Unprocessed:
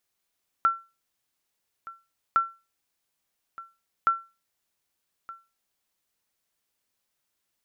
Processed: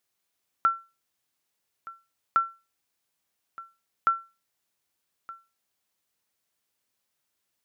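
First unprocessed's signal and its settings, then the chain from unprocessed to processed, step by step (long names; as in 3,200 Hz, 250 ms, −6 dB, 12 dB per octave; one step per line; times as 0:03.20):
ping with an echo 1,350 Hz, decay 0.28 s, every 1.71 s, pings 3, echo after 1.22 s, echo −19.5 dB −13.5 dBFS
high-pass filter 56 Hz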